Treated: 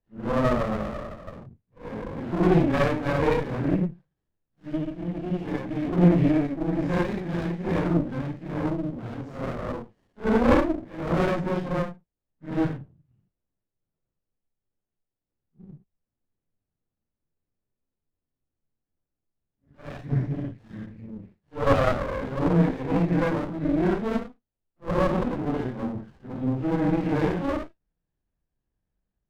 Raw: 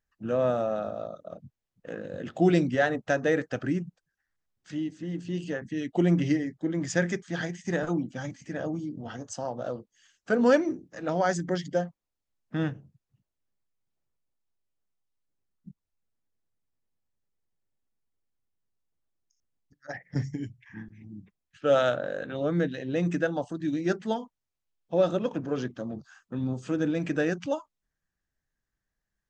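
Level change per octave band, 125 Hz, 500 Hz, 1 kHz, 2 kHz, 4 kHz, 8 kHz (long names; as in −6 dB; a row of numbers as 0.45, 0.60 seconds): +6.0 dB, +1.0 dB, +4.5 dB, −0.5 dB, −0.5 dB, can't be measured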